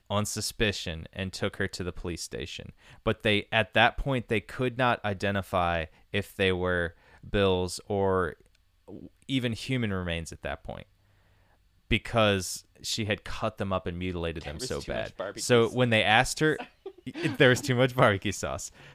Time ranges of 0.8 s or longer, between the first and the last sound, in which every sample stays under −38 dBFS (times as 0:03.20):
0:10.82–0:11.91